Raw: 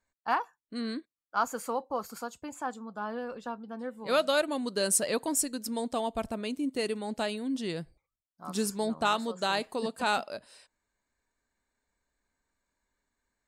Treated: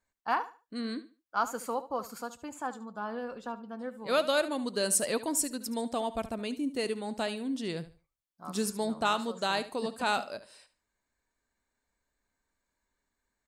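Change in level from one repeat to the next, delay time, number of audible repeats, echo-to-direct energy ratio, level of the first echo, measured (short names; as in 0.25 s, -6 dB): -12.5 dB, 73 ms, 2, -14.5 dB, -15.0 dB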